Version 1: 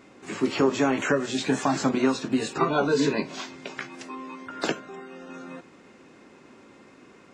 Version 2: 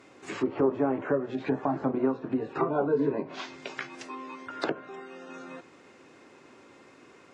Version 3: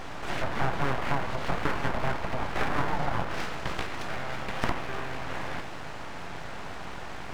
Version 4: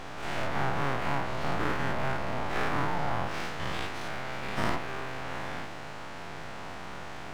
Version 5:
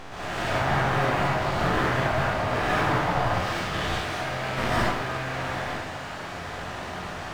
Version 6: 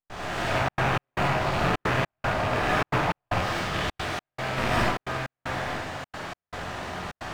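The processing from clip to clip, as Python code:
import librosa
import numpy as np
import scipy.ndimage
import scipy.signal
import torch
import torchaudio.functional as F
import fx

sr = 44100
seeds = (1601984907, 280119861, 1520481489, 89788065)

y1 = scipy.signal.sosfilt(scipy.signal.butter(2, 78.0, 'highpass', fs=sr, output='sos'), x)
y1 = fx.env_lowpass_down(y1, sr, base_hz=840.0, full_db=-22.5)
y1 = fx.peak_eq(y1, sr, hz=200.0, db=-8.0, octaves=0.69)
y1 = F.gain(torch.from_numpy(y1), -1.0).numpy()
y2 = fx.bin_compress(y1, sr, power=0.4)
y2 = fx.dynamic_eq(y2, sr, hz=1100.0, q=0.82, threshold_db=-38.0, ratio=4.0, max_db=7)
y2 = np.abs(y2)
y2 = F.gain(torch.from_numpy(y2), -6.0).numpy()
y3 = fx.spec_dilate(y2, sr, span_ms=120)
y3 = F.gain(torch.from_numpy(y3), -6.0).numpy()
y4 = fx.rev_plate(y3, sr, seeds[0], rt60_s=0.62, hf_ratio=0.95, predelay_ms=110, drr_db=-6.0)
y5 = fx.rattle_buzz(y4, sr, strikes_db=-28.0, level_db=-22.0)
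y5 = fx.step_gate(y5, sr, bpm=154, pattern='.xxxxxx.xx.', floor_db=-60.0, edge_ms=4.5)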